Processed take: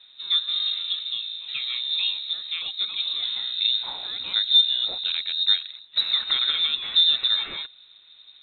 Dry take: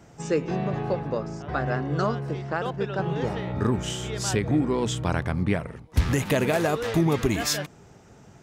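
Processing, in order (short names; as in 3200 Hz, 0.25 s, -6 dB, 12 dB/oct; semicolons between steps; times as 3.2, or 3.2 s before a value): thirty-one-band EQ 100 Hz -6 dB, 200 Hz +10 dB, 315 Hz +12 dB, 800 Hz -11 dB, 2500 Hz +4 dB; requantised 10-bit, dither none; air absorption 120 m; inverted band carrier 3900 Hz; gain -4 dB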